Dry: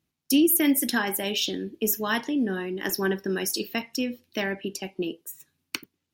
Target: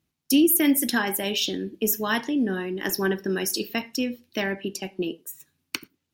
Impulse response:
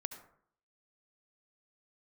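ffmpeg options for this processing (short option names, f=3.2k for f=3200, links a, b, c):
-filter_complex "[0:a]asplit=2[a][b];[1:a]atrim=start_sample=2205,afade=t=out:st=0.17:d=0.01,atrim=end_sample=7938,lowshelf=f=180:g=11.5[c];[b][c]afir=irnorm=-1:irlink=0,volume=-14.5dB[d];[a][d]amix=inputs=2:normalize=0"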